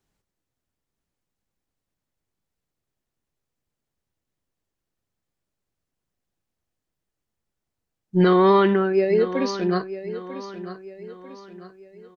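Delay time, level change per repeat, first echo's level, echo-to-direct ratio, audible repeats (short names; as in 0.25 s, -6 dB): 0.945 s, -7.5 dB, -13.0 dB, -12.0 dB, 3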